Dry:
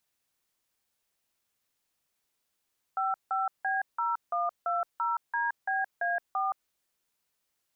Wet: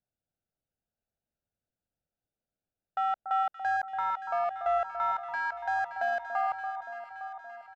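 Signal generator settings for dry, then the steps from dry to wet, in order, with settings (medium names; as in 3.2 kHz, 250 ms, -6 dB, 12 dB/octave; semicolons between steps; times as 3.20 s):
DTMF "55B0120DBA4", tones 171 ms, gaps 167 ms, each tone -29 dBFS
local Wiener filter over 41 samples; comb 1.4 ms, depth 42%; echo whose repeats swap between lows and highs 286 ms, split 1.4 kHz, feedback 77%, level -8 dB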